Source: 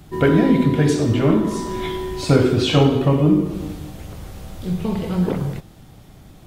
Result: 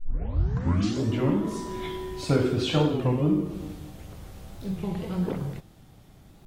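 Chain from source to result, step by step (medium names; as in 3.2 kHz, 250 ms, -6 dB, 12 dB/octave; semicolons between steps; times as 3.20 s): tape start-up on the opening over 1.21 s; warped record 33 1/3 rpm, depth 160 cents; trim -8 dB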